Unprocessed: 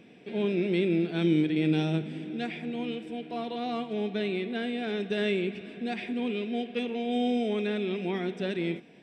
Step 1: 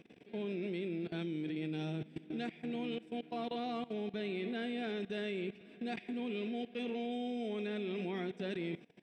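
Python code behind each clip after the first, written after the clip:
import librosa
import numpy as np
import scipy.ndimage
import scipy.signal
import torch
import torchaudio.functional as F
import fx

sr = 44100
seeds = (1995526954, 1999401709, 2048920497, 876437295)

y = fx.level_steps(x, sr, step_db=18)
y = y * 10.0 ** (-2.0 / 20.0)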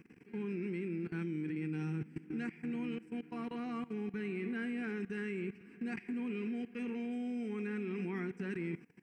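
y = fx.fixed_phaser(x, sr, hz=1500.0, stages=4)
y = y * 10.0 ** (3.5 / 20.0)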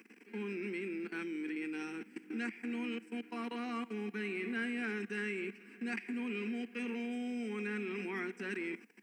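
y = scipy.signal.sosfilt(scipy.signal.ellip(4, 1.0, 40, 210.0, 'highpass', fs=sr, output='sos'), x)
y = fx.tilt_shelf(y, sr, db=-5.0, hz=1200.0)
y = y * 10.0 ** (4.5 / 20.0)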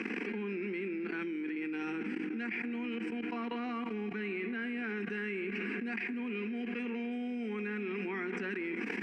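y = scipy.signal.sosfilt(scipy.signal.butter(2, 3100.0, 'lowpass', fs=sr, output='sos'), x)
y = fx.env_flatten(y, sr, amount_pct=100)
y = y * 10.0 ** (-1.5 / 20.0)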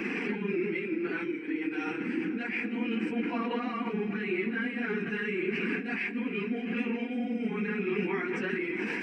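y = fx.phase_scramble(x, sr, seeds[0], window_ms=50)
y = fx.band_widen(y, sr, depth_pct=40)
y = y * 10.0 ** (5.5 / 20.0)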